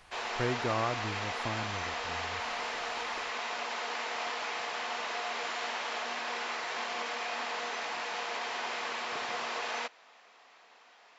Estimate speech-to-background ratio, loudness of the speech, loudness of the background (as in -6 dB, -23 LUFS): -1.5 dB, -36.5 LUFS, -35.0 LUFS